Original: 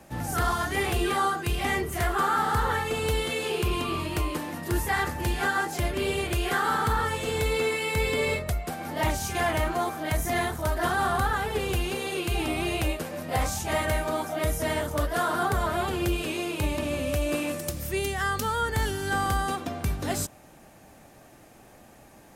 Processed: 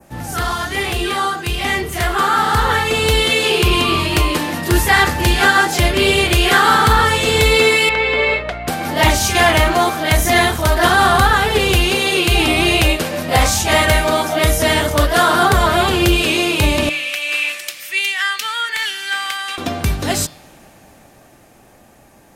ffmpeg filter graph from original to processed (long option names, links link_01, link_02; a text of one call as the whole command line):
ffmpeg -i in.wav -filter_complex "[0:a]asettb=1/sr,asplit=3[link_01][link_02][link_03];[link_01]atrim=end=7.894[link_04];[link_02]atrim=start=7.89:end=8.68,asetpts=PTS-STARTPTS,afade=type=in:duration=0.004:curve=qsin,afade=type=out:start_time=0.786:duration=0.004:curve=qsin,highpass=500,lowpass=2300,bandreject=frequency=1100:width=19,aeval=exprs='val(0)+0.00708*(sin(2*PI*60*n/s)+sin(2*PI*2*60*n/s)/2+sin(2*PI*3*60*n/s)/3+sin(2*PI*4*60*n/s)/4+sin(2*PI*5*60*n/s)/5)':channel_layout=same[link_05];[link_03]atrim=start=8.676[link_06];[link_04][link_05]acrossfade=duration=0.004:curve1=hsin:curve2=qsin[link_07];[link_07][link_06]acrossfade=duration=0.004:curve1=qsin:curve2=hsin,asettb=1/sr,asplit=3[link_08][link_09][link_10];[link_08]atrim=end=16.894[link_11];[link_09]atrim=start=16.89:end=19.58,asetpts=PTS-STARTPTS,afade=type=in:duration=0.004:curve=qsin,afade=type=out:start_time=2.686:duration=0.004:curve=qsin,bandpass=frequency=2300:width_type=q:width=2.1,aemphasis=mode=production:type=bsi[link_12];[link_10]atrim=start=19.576[link_13];[link_11][link_12]acrossfade=duration=0.004:curve1=hsin:curve2=qsin[link_14];[link_14][link_13]acrossfade=duration=0.004:curve1=qsin:curve2=hsin,bandreject=frequency=153.8:width_type=h:width=4,bandreject=frequency=307.6:width_type=h:width=4,bandreject=frequency=461.4:width_type=h:width=4,bandreject=frequency=615.2:width_type=h:width=4,bandreject=frequency=769:width_type=h:width=4,bandreject=frequency=922.8:width_type=h:width=4,bandreject=frequency=1076.6:width_type=h:width=4,bandreject=frequency=1230.4:width_type=h:width=4,bandreject=frequency=1384.2:width_type=h:width=4,bandreject=frequency=1538:width_type=h:width=4,bandreject=frequency=1691.8:width_type=h:width=4,bandreject=frequency=1845.6:width_type=h:width=4,bandreject=frequency=1999.4:width_type=h:width=4,bandreject=frequency=2153.2:width_type=h:width=4,bandreject=frequency=2307:width_type=h:width=4,bandreject=frequency=2460.8:width_type=h:width=4,bandreject=frequency=2614.6:width_type=h:width=4,bandreject=frequency=2768.4:width_type=h:width=4,bandreject=frequency=2922.2:width_type=h:width=4,bandreject=frequency=3076:width_type=h:width=4,bandreject=frequency=3229.8:width_type=h:width=4,bandreject=frequency=3383.6:width_type=h:width=4,bandreject=frequency=3537.4:width_type=h:width=4,bandreject=frequency=3691.2:width_type=h:width=4,bandreject=frequency=3845:width_type=h:width=4,bandreject=frequency=3998.8:width_type=h:width=4,bandreject=frequency=4152.6:width_type=h:width=4,bandreject=frequency=4306.4:width_type=h:width=4,bandreject=frequency=4460.2:width_type=h:width=4,bandreject=frequency=4614:width_type=h:width=4,bandreject=frequency=4767.8:width_type=h:width=4,bandreject=frequency=4921.6:width_type=h:width=4,bandreject=frequency=5075.4:width_type=h:width=4,bandreject=frequency=5229.2:width_type=h:width=4,bandreject=frequency=5383:width_type=h:width=4,adynamicequalizer=threshold=0.00501:dfrequency=3600:dqfactor=0.76:tfrequency=3600:tqfactor=0.76:attack=5:release=100:ratio=0.375:range=3.5:mode=boostabove:tftype=bell,dynaudnorm=framelen=250:gausssize=21:maxgain=8dB,volume=4.5dB" out.wav